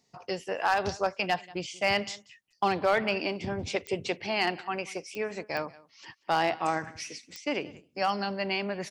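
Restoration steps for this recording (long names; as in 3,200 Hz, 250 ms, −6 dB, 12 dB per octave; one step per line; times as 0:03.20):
clipped peaks rebuilt −16.5 dBFS
click removal
echo removal 186 ms −22 dB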